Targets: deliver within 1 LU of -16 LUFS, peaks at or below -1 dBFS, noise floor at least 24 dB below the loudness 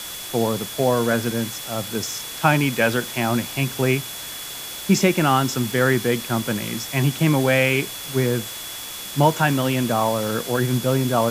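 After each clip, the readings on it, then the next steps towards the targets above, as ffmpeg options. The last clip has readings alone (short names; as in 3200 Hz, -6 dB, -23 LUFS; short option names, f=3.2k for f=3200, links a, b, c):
steady tone 3400 Hz; tone level -37 dBFS; noise floor -33 dBFS; noise floor target -46 dBFS; loudness -21.5 LUFS; peak -4.5 dBFS; loudness target -16.0 LUFS
-> -af "bandreject=f=3.4k:w=30"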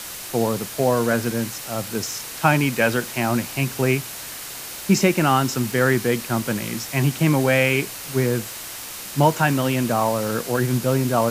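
steady tone none; noise floor -34 dBFS; noise floor target -46 dBFS
-> -af "afftdn=nr=12:nf=-34"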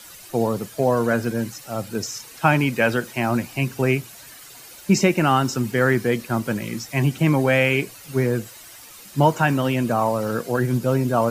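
noise floor -43 dBFS; noise floor target -46 dBFS
-> -af "afftdn=nr=6:nf=-43"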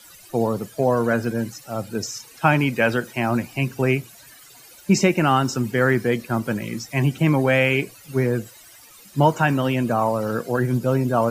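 noise floor -47 dBFS; loudness -21.5 LUFS; peak -4.5 dBFS; loudness target -16.0 LUFS
-> -af "volume=5.5dB,alimiter=limit=-1dB:level=0:latency=1"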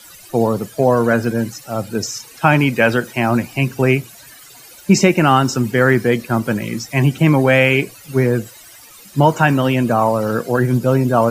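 loudness -16.5 LUFS; peak -1.0 dBFS; noise floor -42 dBFS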